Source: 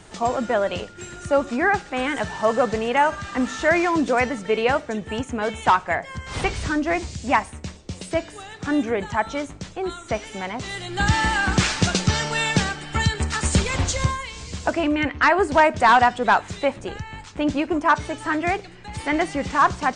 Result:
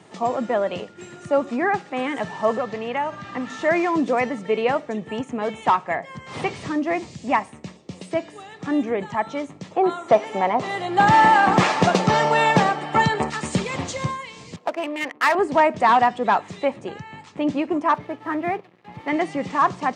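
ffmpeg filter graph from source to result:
ffmpeg -i in.wav -filter_complex "[0:a]asettb=1/sr,asplit=3[link_01][link_02][link_03];[link_01]atrim=end=2.574[link_04];[link_02]atrim=start=2.57:end=3.5,asetpts=PTS-STARTPTS,afade=type=in:duration=0.004:curve=qsin,afade=type=out:start_time=0.926:duration=0.004:curve=qsin,lowpass=7800,acrossover=split=830|2600|5200[link_05][link_06][link_07][link_08];[link_05]acompressor=threshold=-28dB:ratio=3[link_09];[link_06]acompressor=threshold=-27dB:ratio=3[link_10];[link_07]acompressor=threshold=-37dB:ratio=3[link_11];[link_08]acompressor=threshold=-56dB:ratio=3[link_12];[link_09][link_10][link_11][link_12]amix=inputs=4:normalize=0,aeval=exprs='val(0)+0.0112*(sin(2*PI*60*n/s)+sin(2*PI*2*60*n/s)/2+sin(2*PI*3*60*n/s)/3+sin(2*PI*4*60*n/s)/4+sin(2*PI*5*60*n/s)/5)':channel_layout=same[link_13];[link_03]atrim=start=3.496[link_14];[link_04][link_13]acrossfade=duration=0.004:curve1=hsin:curve2=qsin[link_15];[link_15][link_14]acrossfade=duration=0.004:curve1=qsin:curve2=hsin,asettb=1/sr,asplit=3[link_16][link_17][link_18];[link_16]atrim=end=9.714[link_19];[link_17]atrim=start=9.71:end=13.3,asetpts=PTS-STARTPTS,afade=type=in:duration=0.004:curve=qsin,afade=type=out:start_time=3.586:duration=0.004:curve=qsin,equalizer=frequency=760:width=0.57:gain=13,asoftclip=type=hard:threshold=-6.5dB[link_20];[link_18]atrim=start=13.296[link_21];[link_19][link_20]acrossfade=duration=0.004:curve1=hsin:curve2=qsin[link_22];[link_22][link_21]acrossfade=duration=0.004:curve1=qsin:curve2=hsin,asettb=1/sr,asplit=3[link_23][link_24][link_25];[link_23]atrim=end=14.564[link_26];[link_24]atrim=start=14.56:end=15.35,asetpts=PTS-STARTPTS,afade=type=in:duration=0.004:curve=qsin,afade=type=out:start_time=0.786:duration=0.004:curve=qsin,highpass=480,aemphasis=mode=production:type=75fm,adynamicsmooth=sensitivity=2:basefreq=610[link_27];[link_25]atrim=start=15.346[link_28];[link_26][link_27]acrossfade=duration=0.004:curve1=hsin:curve2=qsin[link_29];[link_29][link_28]acrossfade=duration=0.004:curve1=qsin:curve2=hsin,asettb=1/sr,asplit=3[link_30][link_31][link_32];[link_30]atrim=end=17.944[link_33];[link_31]atrim=start=17.94:end=19.08,asetpts=PTS-STARTPTS,afade=type=in:duration=0.004:curve=qsin,afade=type=out:start_time=1.136:duration=0.004:curve=qsin,lowpass=2200,aeval=exprs='sgn(val(0))*max(abs(val(0))-0.00708,0)':channel_layout=same[link_34];[link_32]atrim=start=19.076[link_35];[link_33][link_34]acrossfade=duration=0.004:curve1=hsin:curve2=qsin[link_36];[link_36][link_35]acrossfade=duration=0.004:curve1=qsin:curve2=hsin,highpass=frequency=130:width=0.5412,highpass=frequency=130:width=1.3066,highshelf=frequency=3500:gain=-10,bandreject=frequency=1500:width=6.6" out.wav

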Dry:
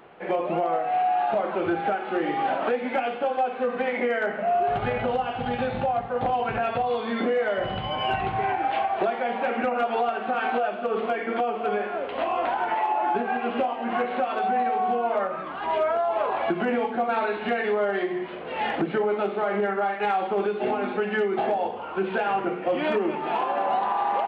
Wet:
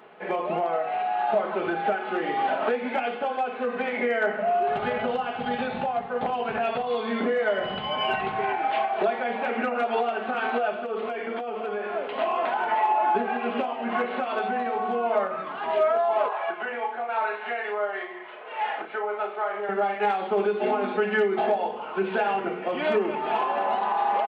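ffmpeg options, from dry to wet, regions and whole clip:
ffmpeg -i in.wav -filter_complex "[0:a]asettb=1/sr,asplit=3[link_01][link_02][link_03];[link_01]atrim=end=10.734[link_04];[link_02]atrim=start=10.73:end=11.9,asetpts=PTS-STARTPTS,afade=type=in:duration=0.004:curve=qsin,afade=type=out:start_time=1.166:duration=0.004:curve=qsin,highpass=180,acompressor=threshold=-27dB:ratio=4:attack=3.2:release=140:knee=1:detection=peak[link_05];[link_03]atrim=start=11.896[link_06];[link_04][link_05]acrossfade=duration=0.004:curve1=hsin:curve2=qsin[link_07];[link_07][link_06]acrossfade=duration=0.004:curve1=qsin:curve2=hsin,asettb=1/sr,asplit=3[link_08][link_09][link_10];[link_08]atrim=end=16.284[link_11];[link_09]atrim=start=16.28:end=19.69,asetpts=PTS-STARTPTS,afade=type=in:duration=0.004:curve=qsin,afade=type=out:start_time=3.406:duration=0.004:curve=qsin,highpass=740,lowpass=4000,highshelf=frequency=2800:gain=-8,asplit=2[link_12][link_13];[link_13]adelay=34,volume=-8.5dB[link_14];[link_12][link_14]amix=inputs=2:normalize=0,atrim=end_sample=150381[link_15];[link_10]atrim=start=19.686[link_16];[link_11][link_15]acrossfade=duration=0.004:curve1=hsin:curve2=qsin[link_17];[link_17][link_16]acrossfade=duration=0.004:curve1=qsin:curve2=hsin,highpass=frequency=240:poles=1,aecho=1:1:4.7:0.45" out.wav

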